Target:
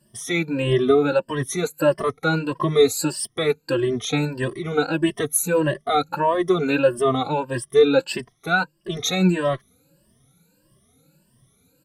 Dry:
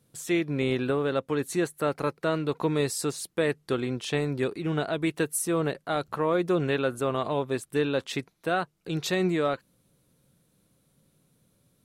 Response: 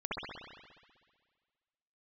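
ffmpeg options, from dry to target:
-filter_complex "[0:a]afftfilt=real='re*pow(10,20/40*sin(2*PI*(1.3*log(max(b,1)*sr/1024/100)/log(2)-(1.6)*(pts-256)/sr)))':imag='im*pow(10,20/40*sin(2*PI*(1.3*log(max(b,1)*sr/1024/100)/log(2)-(1.6)*(pts-256)/sr)))':win_size=1024:overlap=0.75,aresample=32000,aresample=44100,asplit=2[a][b];[b]adelay=3.1,afreqshift=2.6[c];[a][c]amix=inputs=2:normalize=1,volume=5.5dB"

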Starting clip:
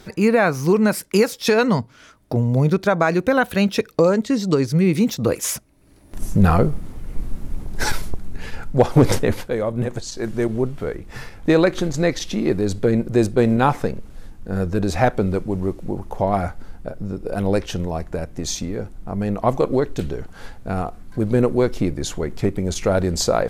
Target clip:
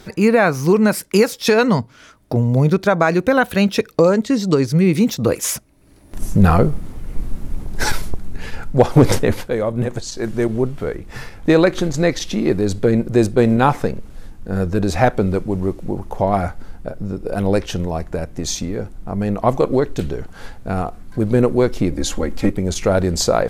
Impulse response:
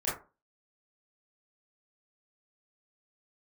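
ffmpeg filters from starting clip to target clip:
-filter_complex "[0:a]asettb=1/sr,asplit=3[a][b][c];[a]atrim=end=21.924[d];[b]atrim=start=21.92:end=22.52,asetpts=PTS-STARTPTS,afade=t=in:d=0.004:c=qsin,afade=t=out:st=0.596:d=0.004:c=qsin,aecho=1:1:3.7:0.85,atrim=end_sample=26460[e];[c]atrim=start=22.516[f];[d][e]acrossfade=d=0.004:c1=hsin:c2=qsin[g];[g][f]acrossfade=d=0.004:c1=qsin:c2=hsin,volume=2.5dB"

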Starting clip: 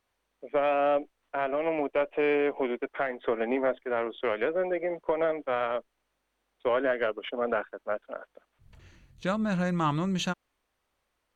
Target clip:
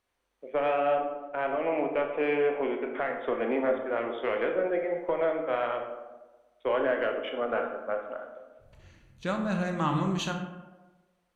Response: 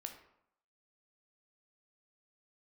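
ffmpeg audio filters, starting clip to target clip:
-filter_complex "[0:a]asettb=1/sr,asplit=3[a][b][c];[a]atrim=end=0.794[d];[b]atrim=start=0.79:end=3.06,asetpts=PTS-STARTPTS,afade=t=in:d=0.004:c=qsin,afade=t=out:st=2.266:d=0.004:c=qsin,lowpass=4.5k[e];[c]atrim=start=3.056[f];[d][e]acrossfade=d=0.004:c1=hsin:c2=qsin[g];[g][f]acrossfade=d=0.004:c1=qsin:c2=hsin[h];[1:a]atrim=start_sample=2205,asetrate=25578,aresample=44100[i];[h][i]afir=irnorm=-1:irlink=0"

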